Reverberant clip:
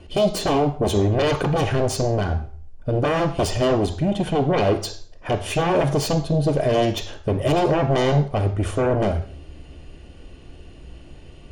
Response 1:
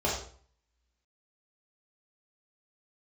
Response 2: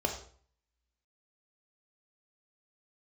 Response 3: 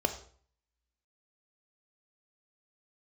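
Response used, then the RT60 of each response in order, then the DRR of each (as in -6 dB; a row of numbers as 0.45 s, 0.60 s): 3; 0.50 s, 0.50 s, 0.50 s; -6.0 dB, 2.5 dB, 7.0 dB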